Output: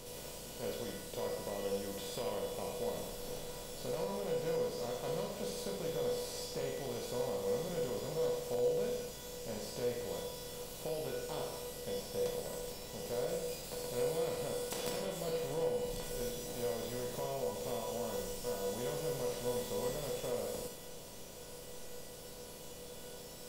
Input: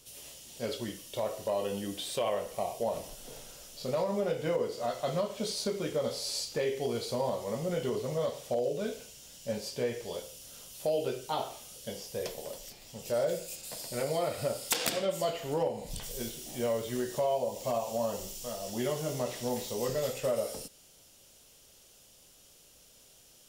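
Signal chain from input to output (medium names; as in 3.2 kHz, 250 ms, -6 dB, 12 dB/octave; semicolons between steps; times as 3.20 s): spectral levelling over time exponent 0.4; bass shelf 230 Hz +9 dB; feedback comb 490 Hz, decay 0.65 s, mix 90%; on a send: flutter echo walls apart 11.3 m, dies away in 0.42 s; on the sum: trim +1 dB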